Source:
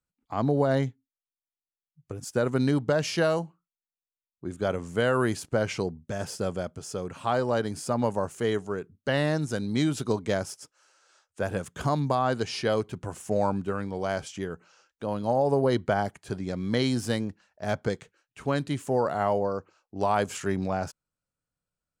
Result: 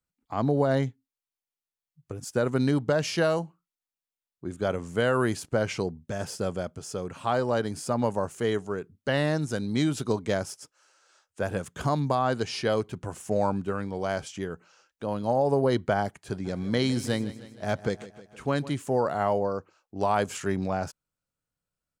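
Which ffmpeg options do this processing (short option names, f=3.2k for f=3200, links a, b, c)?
-filter_complex "[0:a]asplit=3[a][b][c];[a]afade=t=out:st=16.44:d=0.02[d];[b]aecho=1:1:156|312|468|624|780:0.158|0.0903|0.0515|0.0294|0.0167,afade=t=in:st=16.44:d=0.02,afade=t=out:st=18.69:d=0.02[e];[c]afade=t=in:st=18.69:d=0.02[f];[d][e][f]amix=inputs=3:normalize=0"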